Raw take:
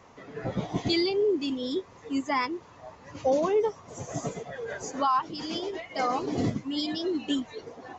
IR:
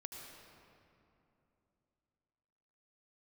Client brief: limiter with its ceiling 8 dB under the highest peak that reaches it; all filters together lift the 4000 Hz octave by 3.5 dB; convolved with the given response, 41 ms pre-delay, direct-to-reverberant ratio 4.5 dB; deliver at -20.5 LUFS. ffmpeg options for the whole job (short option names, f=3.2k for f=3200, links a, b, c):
-filter_complex "[0:a]equalizer=f=4k:t=o:g=4.5,alimiter=limit=-21.5dB:level=0:latency=1,asplit=2[a][b];[1:a]atrim=start_sample=2205,adelay=41[c];[b][c]afir=irnorm=-1:irlink=0,volume=-1.5dB[d];[a][d]amix=inputs=2:normalize=0,volume=10dB"